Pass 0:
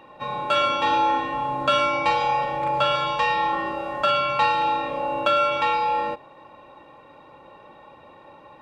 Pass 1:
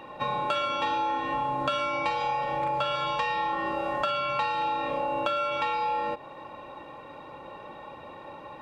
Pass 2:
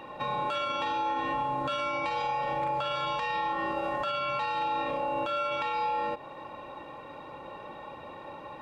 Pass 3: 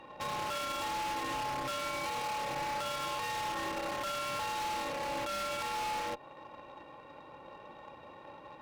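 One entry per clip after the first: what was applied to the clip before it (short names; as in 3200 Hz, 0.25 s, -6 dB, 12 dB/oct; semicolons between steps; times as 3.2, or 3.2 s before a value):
compressor, threshold -30 dBFS, peak gain reduction 13.5 dB; gain +4 dB
limiter -22.5 dBFS, peak gain reduction 9 dB
wavefolder -28 dBFS; added harmonics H 3 -16 dB, 6 -24 dB, 8 -25 dB, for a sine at -28 dBFS; gain -2.5 dB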